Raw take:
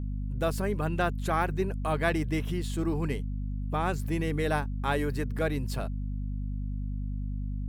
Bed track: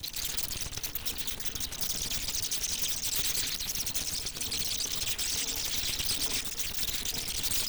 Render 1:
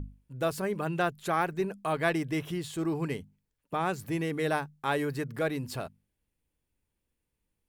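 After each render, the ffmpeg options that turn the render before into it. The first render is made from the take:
-af "bandreject=f=50:t=h:w=6,bandreject=f=100:t=h:w=6,bandreject=f=150:t=h:w=6,bandreject=f=200:t=h:w=6,bandreject=f=250:t=h:w=6"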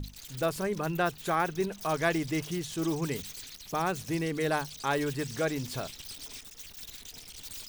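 -filter_complex "[1:a]volume=0.224[s0];[0:a][s0]amix=inputs=2:normalize=0"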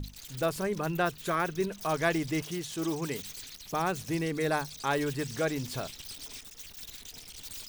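-filter_complex "[0:a]asettb=1/sr,asplit=3[s0][s1][s2];[s0]atrim=end=1.054[s3];[s1]atrim=start=1.05:end=1.79,asetpts=PTS-STARTPTS,afade=t=in:d=0.004:c=qsin,afade=t=out:st=0.736:d=0.004:c=qsin,bandreject=f=800:w=5.2[s4];[s2]atrim=start=1.786[s5];[s3][s4]acrossfade=d=0.004:c1=hsin:c2=qsin[s6];[s6][s5]acrossfade=d=0.004:c1=qsin:c2=hsin,asettb=1/sr,asplit=3[s7][s8][s9];[s7]atrim=end=2.424[s10];[s8]atrim=start=2.42:end=3.25,asetpts=PTS-STARTPTS,afade=t=in:d=0.004:c=qsin,afade=t=out:st=0.826:d=0.004:c=qsin,lowshelf=f=140:g=-8.5[s11];[s9]atrim=start=3.246[s12];[s10][s11]acrossfade=d=0.004:c1=hsin:c2=qsin[s13];[s13][s12]acrossfade=d=0.004:c1=qsin:c2=hsin,asettb=1/sr,asplit=3[s14][s15][s16];[s14]atrim=end=4.324[s17];[s15]atrim=start=4.32:end=4.78,asetpts=PTS-STARTPTS,afade=t=in:d=0.004:c=qsin,afade=t=out:st=0.456:d=0.004:c=qsin,bandreject=f=3000:w=8.2[s18];[s16]atrim=start=4.776[s19];[s17][s18]acrossfade=d=0.004:c1=hsin:c2=qsin[s20];[s20][s19]acrossfade=d=0.004:c1=qsin:c2=hsin"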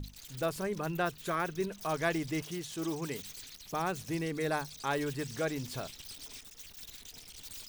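-af "volume=0.668"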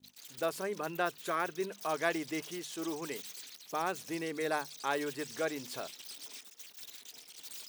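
-af "highpass=300,agate=range=0.0224:threshold=0.00398:ratio=3:detection=peak"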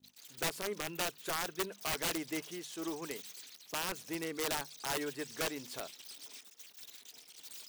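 -af "aeval=exprs='(mod(22.4*val(0)+1,2)-1)/22.4':c=same,aeval=exprs='0.0447*(cos(1*acos(clip(val(0)/0.0447,-1,1)))-cos(1*PI/2))+0.00447*(cos(3*acos(clip(val(0)/0.0447,-1,1)))-cos(3*PI/2))':c=same"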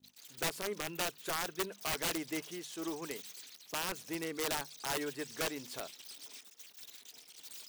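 -af anull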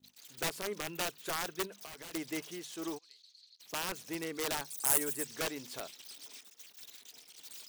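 -filter_complex "[0:a]asplit=3[s0][s1][s2];[s0]afade=t=out:st=1.66:d=0.02[s3];[s1]acompressor=threshold=0.00708:ratio=16:attack=3.2:release=140:knee=1:detection=peak,afade=t=in:st=1.66:d=0.02,afade=t=out:st=2.13:d=0.02[s4];[s2]afade=t=in:st=2.13:d=0.02[s5];[s3][s4][s5]amix=inputs=3:normalize=0,asplit=3[s6][s7][s8];[s6]afade=t=out:st=2.97:d=0.02[s9];[s7]bandpass=f=4300:t=q:w=9.1,afade=t=in:st=2.97:d=0.02,afade=t=out:st=3.59:d=0.02[s10];[s8]afade=t=in:st=3.59:d=0.02[s11];[s9][s10][s11]amix=inputs=3:normalize=0,asettb=1/sr,asplit=3[s12][s13][s14];[s12]atrim=end=4.704[s15];[s13]atrim=start=4.7:end=5.25,asetpts=PTS-STARTPTS,afade=t=in:d=0.004:c=qsin,afade=t=out:st=0.546:d=0.004:c=qsin,highshelf=f=6600:t=q:w=1.5:g=13.5[s16];[s14]atrim=start=5.246[s17];[s15][s16]acrossfade=d=0.004:c1=hsin:c2=qsin[s18];[s18][s17]acrossfade=d=0.004:c1=qsin:c2=hsin"

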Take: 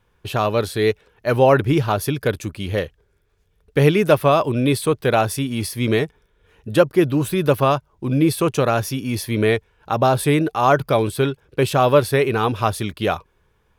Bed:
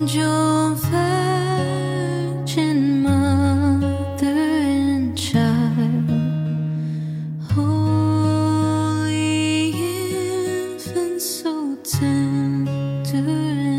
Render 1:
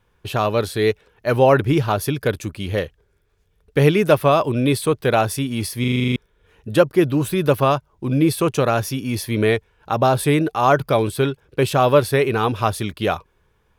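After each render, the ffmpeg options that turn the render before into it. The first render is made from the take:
-filter_complex "[0:a]asplit=10[s0][s1][s2][s3][s4][s5][s6][s7][s8][s9];[s0]atrim=end=5.842[s10];[s1]atrim=start=5.798:end=5.842[s11];[s2]atrim=start=5.798:end=5.842[s12];[s3]atrim=start=5.798:end=5.842[s13];[s4]atrim=start=5.798:end=5.842[s14];[s5]atrim=start=5.798:end=5.842[s15];[s6]atrim=start=5.798:end=5.842[s16];[s7]atrim=start=5.798:end=5.842[s17];[s8]atrim=start=5.798:end=5.842[s18];[s9]atrim=start=6.158[s19];[s10][s11]acrossfade=d=0.004:c1=hsin:c2=hsin[s20];[s20][s12]acrossfade=d=0.004:c1=hsin:c2=hsin[s21];[s21][s13]acrossfade=d=0.004:c1=hsin:c2=hsin[s22];[s22][s14]acrossfade=d=0.004:c1=hsin:c2=hsin[s23];[s23][s15]acrossfade=d=0.004:c1=hsin:c2=hsin[s24];[s24][s16]acrossfade=d=0.004:c1=hsin:c2=hsin[s25];[s25][s17]acrossfade=d=0.004:c1=hsin:c2=hsin[s26];[s26][s18]acrossfade=d=0.004:c1=hsin:c2=hsin[s27];[s27][s19]acrossfade=d=0.004:c1=hsin:c2=hsin"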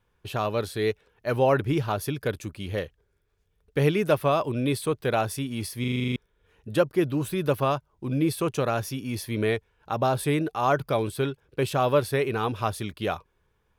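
-af "volume=0.422"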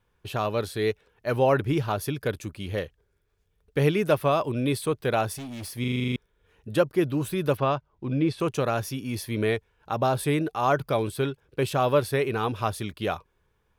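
-filter_complex "[0:a]asettb=1/sr,asplit=3[s0][s1][s2];[s0]atrim=end=5.334[s3];[s1]atrim=start=5.33:end=5.78,asetpts=PTS-STARTPTS,afade=t=in:d=0.004:c=qsin,afade=t=out:st=0.446:d=0.004:c=qsin,asoftclip=type=hard:threshold=0.0188[s4];[s2]atrim=start=5.776[s5];[s3][s4]acrossfade=d=0.004:c1=hsin:c2=qsin[s6];[s6][s5]acrossfade=d=0.004:c1=qsin:c2=hsin,asettb=1/sr,asplit=3[s7][s8][s9];[s7]atrim=end=7.574[s10];[s8]atrim=start=7.57:end=8.4,asetpts=PTS-STARTPTS,afade=t=in:d=0.004:c=qsin,afade=t=out:st=0.826:d=0.004:c=qsin,lowpass=4300[s11];[s9]atrim=start=8.396[s12];[s10][s11]acrossfade=d=0.004:c1=hsin:c2=qsin[s13];[s13][s12]acrossfade=d=0.004:c1=qsin:c2=hsin"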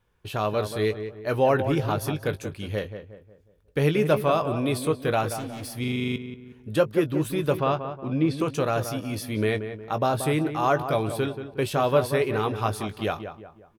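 -filter_complex "[0:a]asplit=2[s0][s1];[s1]adelay=19,volume=0.282[s2];[s0][s2]amix=inputs=2:normalize=0,asplit=2[s3][s4];[s4]adelay=181,lowpass=f=1800:p=1,volume=0.355,asplit=2[s5][s6];[s6]adelay=181,lowpass=f=1800:p=1,volume=0.42,asplit=2[s7][s8];[s8]adelay=181,lowpass=f=1800:p=1,volume=0.42,asplit=2[s9][s10];[s10]adelay=181,lowpass=f=1800:p=1,volume=0.42,asplit=2[s11][s12];[s12]adelay=181,lowpass=f=1800:p=1,volume=0.42[s13];[s3][s5][s7][s9][s11][s13]amix=inputs=6:normalize=0"

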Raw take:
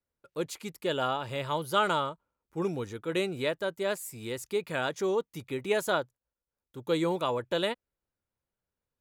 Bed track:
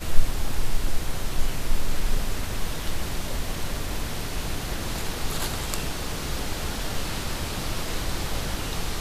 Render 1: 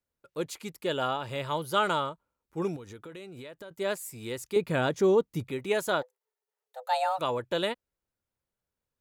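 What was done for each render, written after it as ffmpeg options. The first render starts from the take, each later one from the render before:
-filter_complex "[0:a]asettb=1/sr,asplit=3[s0][s1][s2];[s0]atrim=end=2.764[s3];[s1]atrim=start=2.76:end=3.71,asetpts=PTS-STARTPTS,afade=t=in:d=0.004:c=qsin,afade=t=out:st=0.946:d=0.004:c=qsin,acompressor=threshold=0.00891:ratio=8:attack=3.2:release=140:knee=1:detection=peak[s4];[s2]atrim=start=3.706[s5];[s3][s4]acrossfade=d=0.004:c1=hsin:c2=qsin[s6];[s6][s5]acrossfade=d=0.004:c1=qsin:c2=hsin,asettb=1/sr,asplit=3[s7][s8][s9];[s7]atrim=end=4.564[s10];[s8]atrim=start=4.56:end=5.51,asetpts=PTS-STARTPTS,afade=t=in:d=0.004:c=qsin,afade=t=out:st=0.946:d=0.004:c=qsin,lowshelf=f=480:g=10.5[s11];[s9]atrim=start=5.506[s12];[s10][s11]acrossfade=d=0.004:c1=hsin:c2=qsin[s13];[s13][s12]acrossfade=d=0.004:c1=qsin:c2=hsin,asplit=3[s14][s15][s16];[s14]afade=t=out:st=6.01:d=0.02[s17];[s15]afreqshift=380,afade=t=in:st=6.01:d=0.02,afade=t=out:st=7.18:d=0.02[s18];[s16]afade=t=in:st=7.18:d=0.02[s19];[s17][s18][s19]amix=inputs=3:normalize=0"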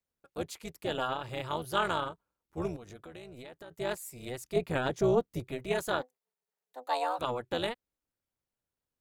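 -af "tremolo=f=250:d=0.788"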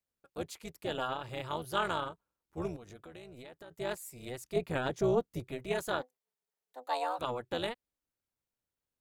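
-af "volume=0.75"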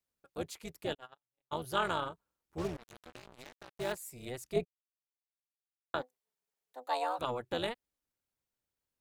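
-filter_complex "[0:a]asplit=3[s0][s1][s2];[s0]afade=t=out:st=0.93:d=0.02[s3];[s1]agate=range=0.001:threshold=0.0251:ratio=16:release=100:detection=peak,afade=t=in:st=0.93:d=0.02,afade=t=out:st=1.51:d=0.02[s4];[s2]afade=t=in:st=1.51:d=0.02[s5];[s3][s4][s5]amix=inputs=3:normalize=0,asettb=1/sr,asplit=3[s6][s7][s8];[s6]atrim=end=2.584[s9];[s7]atrim=start=2.58:end=3.92,asetpts=PTS-STARTPTS,afade=t=in:d=0.004:c=qsin,afade=t=out:st=1.336:d=0.004:c=qsin,acrusher=bits=6:mix=0:aa=0.5[s10];[s8]atrim=start=3.916[s11];[s9][s10]acrossfade=d=0.004:c1=hsin:c2=qsin[s12];[s12][s11]acrossfade=d=0.004:c1=qsin:c2=hsin,asplit=3[s13][s14][s15];[s13]atrim=end=4.65,asetpts=PTS-STARTPTS,afade=t=out:st=4.646:d=0.004:c=hsin[s16];[s14]atrim=start=4.65:end=5.94,asetpts=PTS-STARTPTS,volume=0[s17];[s15]atrim=start=5.94,asetpts=PTS-STARTPTS,afade=t=in:d=0.004:c=hsin[s18];[s16][s17][s18]concat=n=3:v=0:a=1"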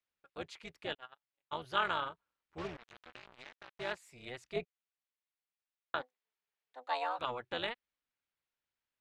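-af "lowpass=2600,tiltshelf=f=1100:g=-8"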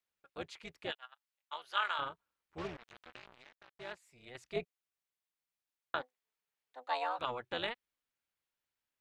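-filter_complex "[0:a]asplit=3[s0][s1][s2];[s0]afade=t=out:st=0.9:d=0.02[s3];[s1]highpass=940,afade=t=in:st=0.9:d=0.02,afade=t=out:st=1.98:d=0.02[s4];[s2]afade=t=in:st=1.98:d=0.02[s5];[s3][s4][s5]amix=inputs=3:normalize=0,asplit=3[s6][s7][s8];[s6]atrim=end=3.382[s9];[s7]atrim=start=3.378:end=4.352,asetpts=PTS-STARTPTS,volume=0.447[s10];[s8]atrim=start=4.348[s11];[s9][s10]acrossfade=d=0.004:c1=hsin:c2=hsin[s12];[s12][s11]acrossfade=d=0.004:c1=hsin:c2=hsin"

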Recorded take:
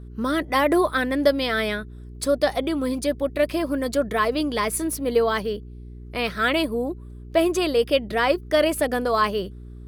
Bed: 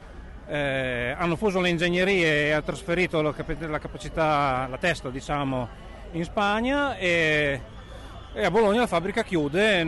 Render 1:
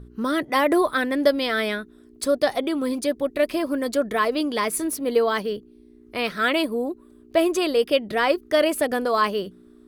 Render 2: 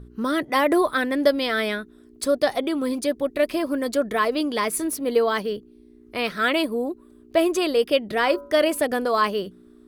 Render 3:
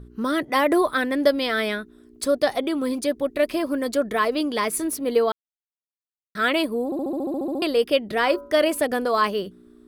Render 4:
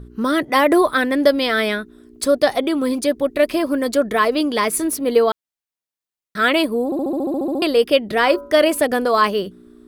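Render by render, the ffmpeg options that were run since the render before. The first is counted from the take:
-af "bandreject=f=60:t=h:w=4,bandreject=f=120:t=h:w=4,bandreject=f=180:t=h:w=4"
-filter_complex "[0:a]asettb=1/sr,asplit=3[s0][s1][s2];[s0]atrim=end=8.154[s3];[s1]atrim=start=8.15:end=8.79,asetpts=PTS-STARTPTS,afade=t=in:d=0.004:c=qsin,afade=t=out:st=0.636:d=0.004:c=qsin,bandreject=f=142.2:t=h:w=4,bandreject=f=284.4:t=h:w=4,bandreject=f=426.6:t=h:w=4,bandreject=f=568.8:t=h:w=4,bandreject=f=711:t=h:w=4,bandreject=f=853.2:t=h:w=4,bandreject=f=995.4:t=h:w=4,bandreject=f=1137.6:t=h:w=4,bandreject=f=1279.8:t=h:w=4,bandreject=f=1422:t=h:w=4,bandreject=f=1564.2:t=h:w=4[s4];[s2]atrim=start=8.786[s5];[s3][s4]acrossfade=d=0.004:c1=hsin:c2=qsin[s6];[s6][s5]acrossfade=d=0.004:c1=qsin:c2=hsin"
-filter_complex "[0:a]asplit=14[s0][s1][s2][s3][s4][s5][s6][s7][s8][s9][s10][s11][s12][s13];[s0]atrim=end=5.32,asetpts=PTS-STARTPTS,afade=t=out:st=5.316:d=0.004:c=hsin[s14];[s1]atrim=start=5.32:end=6.35,asetpts=PTS-STARTPTS,volume=0[s15];[s2]atrim=start=6.35:end=6.922,asetpts=PTS-STARTPTS,afade=t=in:d=0.004:c=hsin[s16];[s3]atrim=start=6.848:end=6.922[s17];[s4]atrim=start=6.848:end=6.922[s18];[s5]atrim=start=6.848:end=6.922[s19];[s6]atrim=start=6.848:end=6.922[s20];[s7]atrim=start=6.848:end=6.922[s21];[s8]atrim=start=6.848:end=6.922[s22];[s9]atrim=start=6.848:end=6.922[s23];[s10]atrim=start=6.848:end=6.922[s24];[s11]atrim=start=6.848:end=6.922[s25];[s12]atrim=start=6.848:end=6.922[s26];[s13]atrim=start=7.618[s27];[s14][s15][s16]concat=n=3:v=0:a=1[s28];[s28][s17]acrossfade=d=0.004:c1=hsin:c2=hsin[s29];[s29][s18]acrossfade=d=0.004:c1=hsin:c2=hsin[s30];[s30][s19]acrossfade=d=0.004:c1=hsin:c2=hsin[s31];[s31][s20]acrossfade=d=0.004:c1=hsin:c2=hsin[s32];[s32][s21]acrossfade=d=0.004:c1=hsin:c2=hsin[s33];[s33][s22]acrossfade=d=0.004:c1=hsin:c2=hsin[s34];[s34][s23]acrossfade=d=0.004:c1=hsin:c2=hsin[s35];[s35][s24]acrossfade=d=0.004:c1=hsin:c2=hsin[s36];[s36][s25]acrossfade=d=0.004:c1=hsin:c2=hsin[s37];[s37][s26]acrossfade=d=0.004:c1=hsin:c2=hsin[s38];[s38][s27]acrossfade=d=0.004:c1=hsin:c2=hsin"
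-af "volume=1.78,alimiter=limit=0.794:level=0:latency=1"

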